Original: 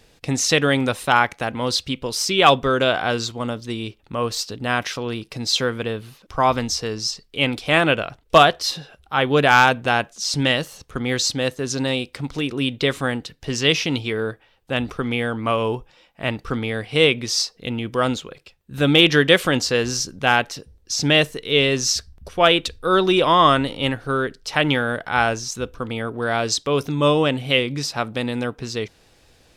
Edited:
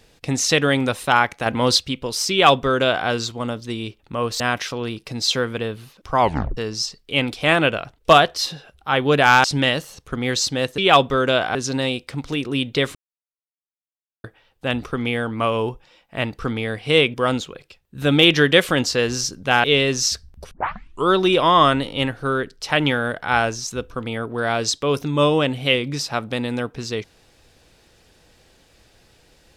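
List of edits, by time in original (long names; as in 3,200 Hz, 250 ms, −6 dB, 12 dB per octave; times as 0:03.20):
0:01.46–0:01.78: clip gain +5 dB
0:02.31–0:03.08: duplicate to 0:11.61
0:04.40–0:04.65: remove
0:06.45: tape stop 0.37 s
0:09.69–0:10.27: remove
0:13.01–0:14.30: silence
0:17.20–0:17.90: remove
0:20.40–0:21.48: remove
0:22.35: tape start 0.59 s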